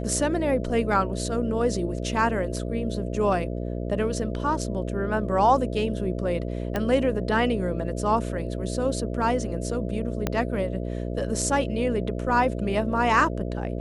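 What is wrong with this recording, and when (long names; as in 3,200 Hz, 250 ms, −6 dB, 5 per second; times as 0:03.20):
mains buzz 60 Hz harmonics 11 −30 dBFS
0:06.76: click −13 dBFS
0:10.27: click −10 dBFS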